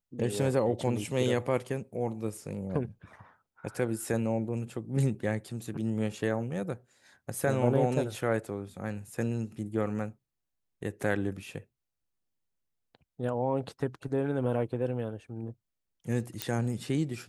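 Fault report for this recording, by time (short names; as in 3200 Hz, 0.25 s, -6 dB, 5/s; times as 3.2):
16.42 pop -13 dBFS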